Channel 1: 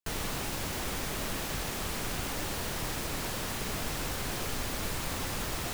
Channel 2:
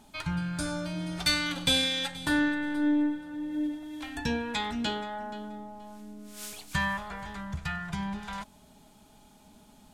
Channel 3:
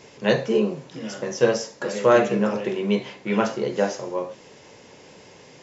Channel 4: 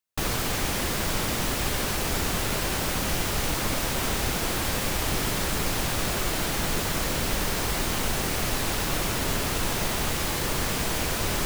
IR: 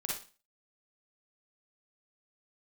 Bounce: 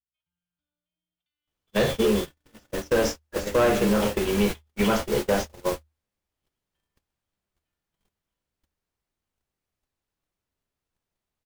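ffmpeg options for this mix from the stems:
-filter_complex "[0:a]asubboost=boost=12:cutoff=92,aeval=exprs='0.02*(abs(mod(val(0)/0.02+3,4)-2)-1)':c=same,adelay=300,volume=0.316[s0];[1:a]aeval=exprs='val(0)+0.00631*(sin(2*PI*60*n/s)+sin(2*PI*2*60*n/s)/2+sin(2*PI*3*60*n/s)/3+sin(2*PI*4*60*n/s)/4+sin(2*PI*5*60*n/s)/5)':c=same,lowpass=f=3100:t=q:w=7.8,acompressor=threshold=0.0447:ratio=12,volume=0.562[s1];[2:a]asoftclip=type=tanh:threshold=0.2,adelay=1500,volume=1.33,asplit=2[s2][s3];[s3]volume=0.1[s4];[3:a]acontrast=36,adelay=1300,volume=0.335[s5];[4:a]atrim=start_sample=2205[s6];[s4][s6]afir=irnorm=-1:irlink=0[s7];[s0][s1][s2][s5][s7]amix=inputs=5:normalize=0,agate=range=0.00158:threshold=0.0794:ratio=16:detection=peak,equalizer=f=76:w=7.3:g=8,alimiter=limit=0.224:level=0:latency=1:release=99"

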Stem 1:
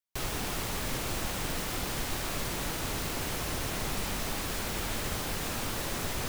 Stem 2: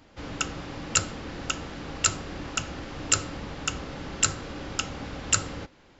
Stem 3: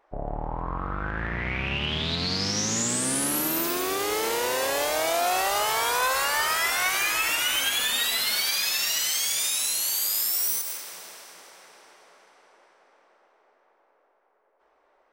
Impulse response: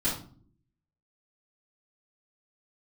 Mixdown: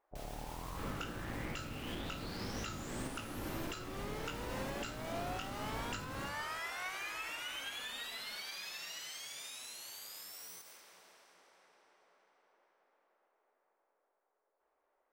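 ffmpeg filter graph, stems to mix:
-filter_complex "[0:a]alimiter=level_in=2.24:limit=0.0631:level=0:latency=1:release=441,volume=0.447,volume=0.335[s0];[1:a]lowpass=4300,flanger=delay=15.5:depth=4.8:speed=1.6,adelay=600,volume=0.794,asplit=2[s1][s2];[s2]volume=0.126[s3];[2:a]volume=0.188[s4];[s1][s4]amix=inputs=2:normalize=0,lowpass=f=2900:p=1,alimiter=level_in=1.58:limit=0.0631:level=0:latency=1:release=322,volume=0.631,volume=1[s5];[3:a]atrim=start_sample=2205[s6];[s3][s6]afir=irnorm=-1:irlink=0[s7];[s0][s5][s7]amix=inputs=3:normalize=0,alimiter=level_in=2:limit=0.0631:level=0:latency=1:release=426,volume=0.501"

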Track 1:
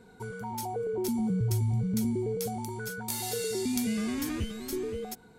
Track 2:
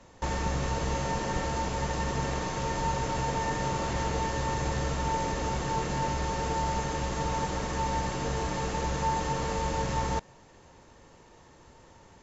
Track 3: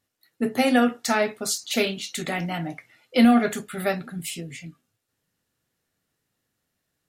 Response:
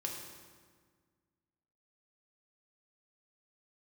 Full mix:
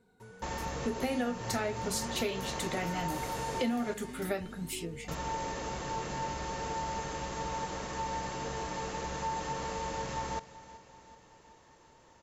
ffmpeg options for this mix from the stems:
-filter_complex "[0:a]volume=0.224[s0];[1:a]lowshelf=f=210:g=-7.5,adelay=200,volume=0.596,asplit=3[s1][s2][s3];[s1]atrim=end=3.94,asetpts=PTS-STARTPTS,afade=t=out:st=3.936:d=0.004:c=hsin[s4];[s2]atrim=start=3.94:end=5.08,asetpts=PTS-STARTPTS,volume=0[s5];[s3]atrim=start=5.08,asetpts=PTS-STARTPTS,afade=t=in:d=0.004:c=hsin[s6];[s4][s5][s6]concat=n=3:v=0:a=1,asplit=2[s7][s8];[s8]volume=0.133[s9];[2:a]aeval=exprs='val(0)+0.00562*(sin(2*PI*50*n/s)+sin(2*PI*2*50*n/s)/2+sin(2*PI*3*50*n/s)/3+sin(2*PI*4*50*n/s)/4+sin(2*PI*5*50*n/s)/5)':c=same,equalizer=f=410:w=1.7:g=5,adelay=450,volume=0.473[s10];[s9]aecho=0:1:378|756|1134|1512|1890|2268|2646|3024|3402:1|0.59|0.348|0.205|0.121|0.0715|0.0422|0.0249|0.0147[s11];[s0][s7][s10][s11]amix=inputs=4:normalize=0,acompressor=threshold=0.0355:ratio=6"

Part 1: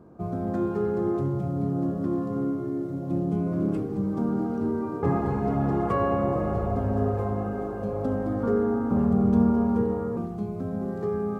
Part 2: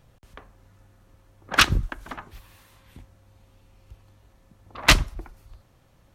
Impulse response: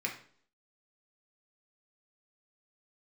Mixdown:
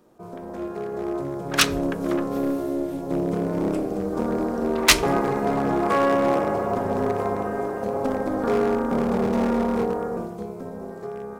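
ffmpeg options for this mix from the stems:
-filter_complex "[0:a]highpass=f=100:w=0.5412,highpass=f=100:w=1.3066,tremolo=f=280:d=0.788,volume=11.9,asoftclip=hard,volume=0.0841,volume=0.891,asplit=2[s0][s1];[s1]volume=0.237[s2];[1:a]acontrast=82,volume=0.15,asplit=2[s3][s4];[s4]volume=0.15[s5];[2:a]atrim=start_sample=2205[s6];[s2][s5]amix=inputs=2:normalize=0[s7];[s7][s6]afir=irnorm=-1:irlink=0[s8];[s0][s3][s8]amix=inputs=3:normalize=0,dynaudnorm=f=310:g=9:m=3.16,bass=f=250:g=-9,treble=f=4000:g=7"

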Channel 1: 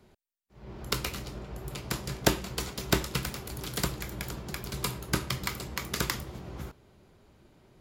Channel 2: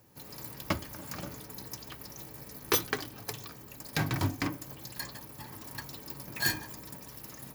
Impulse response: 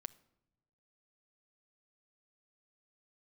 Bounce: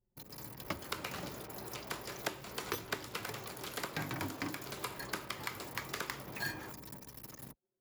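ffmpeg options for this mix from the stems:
-filter_complex "[0:a]highpass=430,volume=0.841[s0];[1:a]volume=0.75[s1];[s0][s1]amix=inputs=2:normalize=0,anlmdn=0.00631,acrossover=split=180|2700[s2][s3][s4];[s2]acompressor=threshold=0.00355:ratio=4[s5];[s3]acompressor=threshold=0.0141:ratio=4[s6];[s4]acompressor=threshold=0.00562:ratio=4[s7];[s5][s6][s7]amix=inputs=3:normalize=0"

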